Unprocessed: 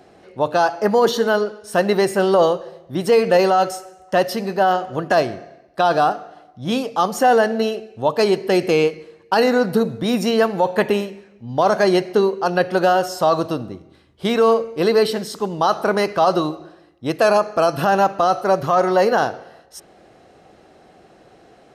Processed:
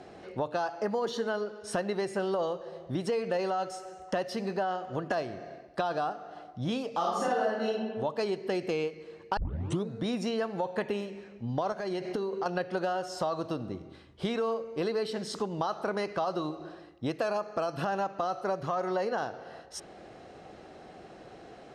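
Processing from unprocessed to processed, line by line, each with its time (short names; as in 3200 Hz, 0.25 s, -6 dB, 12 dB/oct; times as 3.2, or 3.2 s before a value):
6.91–7.67 reverb throw, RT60 0.99 s, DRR -7.5 dB
9.37 tape start 0.50 s
11.72–12.46 compressor 10:1, threshold -21 dBFS
whole clip: compressor 4:1, threshold -31 dBFS; Bessel low-pass 7400 Hz, order 8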